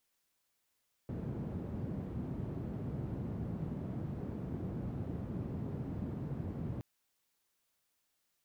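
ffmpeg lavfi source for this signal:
-f lavfi -i "anoisesrc=c=white:d=5.72:r=44100:seed=1,highpass=f=91,lowpass=f=170,volume=-11.1dB"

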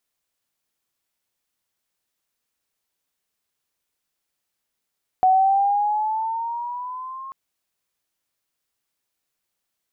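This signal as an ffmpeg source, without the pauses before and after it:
-f lavfi -i "aevalsrc='pow(10,(-12-20.5*t/2.09)/20)*sin(2*PI*743*2.09/(6.5*log(2)/12)*(exp(6.5*log(2)/12*t/2.09)-1))':d=2.09:s=44100"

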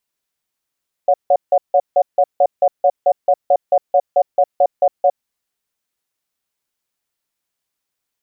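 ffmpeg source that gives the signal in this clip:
-f lavfi -i "aevalsrc='0.266*(sin(2*PI*564*t)+sin(2*PI*724*t))*clip(min(mod(t,0.22),0.06-mod(t,0.22))/0.005,0,1)':d=4.12:s=44100"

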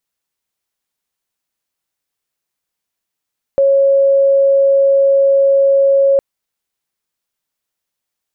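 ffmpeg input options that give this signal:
-f lavfi -i "aevalsrc='0.422*sin(2*PI*550*t)':d=2.61:s=44100"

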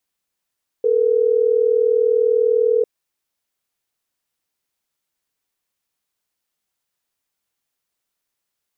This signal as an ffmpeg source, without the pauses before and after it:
-f lavfi -i "aevalsrc='0.158*(sin(2*PI*440*t)+sin(2*PI*480*t))*clip(min(mod(t,6),2-mod(t,6))/0.005,0,1)':d=3.12:s=44100"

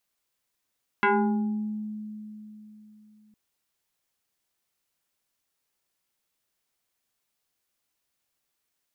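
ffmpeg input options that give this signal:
-f lavfi -i "aevalsrc='0.133*pow(10,-3*t/3.57)*sin(2*PI*213*t+3.4*pow(10,-3*t/0.98)*sin(2*PI*2.87*213*t))':d=2.31:s=44100"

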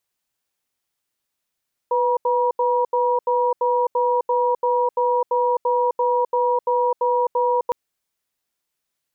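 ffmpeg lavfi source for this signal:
-f lavfi -i "aevalsrc='0.112*(sin(2*PI*495*t)+sin(2*PI*959*t))*clip(min(mod(t,0.34),0.26-mod(t,0.34))/0.005,0,1)':d=5.81:s=44100"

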